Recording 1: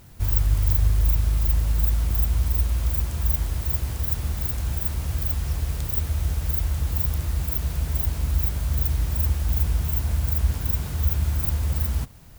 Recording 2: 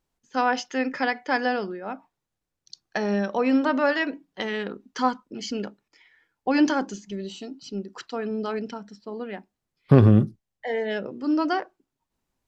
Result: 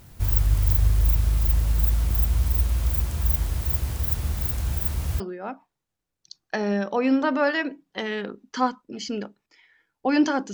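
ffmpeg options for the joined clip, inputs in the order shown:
-filter_complex "[0:a]apad=whole_dur=10.53,atrim=end=10.53,atrim=end=5.202[a];[1:a]atrim=start=1.618:end=6.95[b];[a][b]acrossfade=d=0.004:c1=hsin:c2=hsin"

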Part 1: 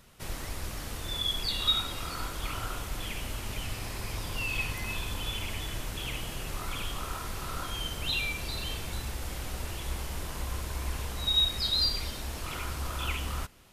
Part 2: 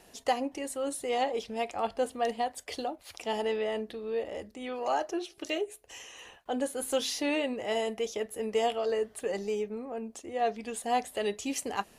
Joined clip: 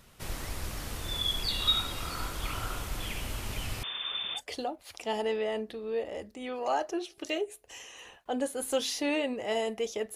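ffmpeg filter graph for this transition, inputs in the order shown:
-filter_complex "[0:a]asettb=1/sr,asplit=3[a][b][c];[a]atrim=end=3.834[d];[b]atrim=start=3.83:end=4.41,asetpts=PTS-STARTPTS,afade=t=in:d=0.004:c=qsin,afade=t=out:st=0.576:d=0.004:c=qsin,lowpass=f=3.1k:t=q:w=0.5098,lowpass=f=3.1k:t=q:w=0.6013,lowpass=f=3.1k:t=q:w=0.9,lowpass=f=3.1k:t=q:w=2.563,afreqshift=-3600[e];[c]atrim=start=4.406[f];[d][e]acrossfade=d=0.004:c1=hsin:c2=qsin[g];[g][f]acrossfade=d=0.004:c1=qsin:c2=hsin,apad=whole_dur=10.15,atrim=end=10.15,atrim=end=4.41,asetpts=PTS-STARTPTS[h];[1:a]atrim=start=2.55:end=8.35,asetpts=PTS-STARTPTS[i];[h][i]acrossfade=d=0.06:c1=tri:c2=tri"

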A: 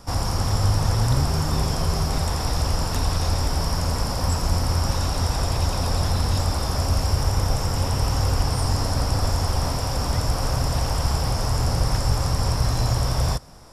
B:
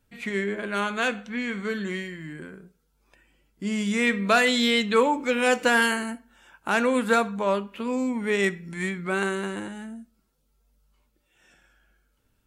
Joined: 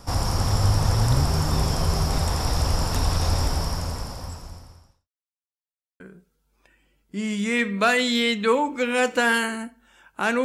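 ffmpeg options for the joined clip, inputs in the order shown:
-filter_complex "[0:a]apad=whole_dur=10.44,atrim=end=10.44,asplit=2[a][b];[a]atrim=end=5.09,asetpts=PTS-STARTPTS,afade=t=out:st=3.43:d=1.66:c=qua[c];[b]atrim=start=5.09:end=6,asetpts=PTS-STARTPTS,volume=0[d];[1:a]atrim=start=2.48:end=6.92,asetpts=PTS-STARTPTS,afade=t=in:d=0.004:c=hsin[e];[c][d][e]concat=n=3:v=0:a=1"

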